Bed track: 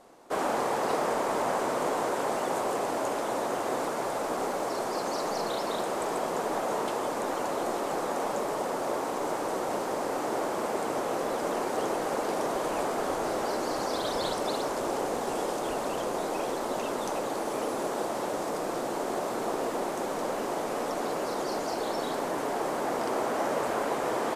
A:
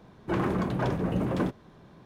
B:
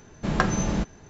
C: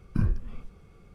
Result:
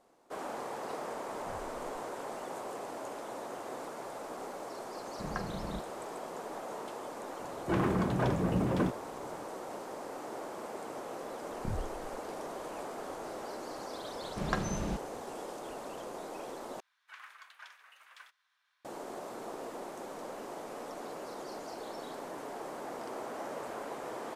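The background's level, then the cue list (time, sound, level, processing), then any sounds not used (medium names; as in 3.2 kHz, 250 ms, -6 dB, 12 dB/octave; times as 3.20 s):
bed track -11.5 dB
1.31 s: add C -17 dB + compression, threshold -29 dBFS
4.96 s: add B -15 dB + low-pass 2.2 kHz
7.40 s: add A -2 dB
11.49 s: add C -12 dB
14.13 s: add B -10 dB
16.80 s: replace with A -10.5 dB + high-pass 1.4 kHz 24 dB/octave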